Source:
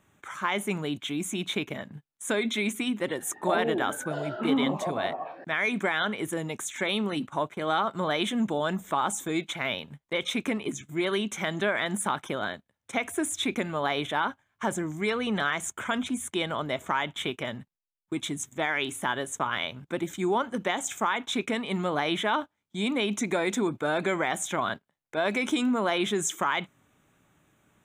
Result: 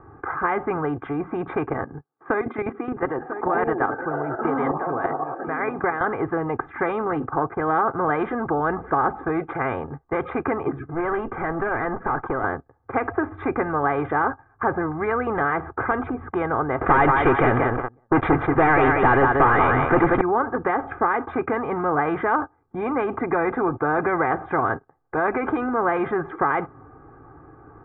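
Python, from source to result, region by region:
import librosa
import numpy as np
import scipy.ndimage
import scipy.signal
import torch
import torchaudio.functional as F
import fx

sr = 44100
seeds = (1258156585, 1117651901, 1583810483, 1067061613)

y = fx.chain(x, sr, fx.highpass(hz=140.0, slope=24),
    fx.level_steps(step_db=9),
    fx.echo_single(ms=996, db=-18.0), at=(1.84, 6.01))
y = fx.chain(y, sr, fx.lowpass(hz=3900.0, slope=12),
    fx.tube_stage(drive_db=25.0, bias=0.35), at=(10.94, 12.44))
y = fx.chain(y, sr, fx.echo_feedback(ms=183, feedback_pct=23, wet_db=-9.0),
    fx.leveller(passes=5), at=(16.81, 20.21))
y = scipy.signal.sosfilt(scipy.signal.butter(6, 1400.0, 'lowpass', fs=sr, output='sos'), y)
y = y + 0.86 * np.pad(y, (int(2.5 * sr / 1000.0), 0))[:len(y)]
y = fx.spectral_comp(y, sr, ratio=2.0)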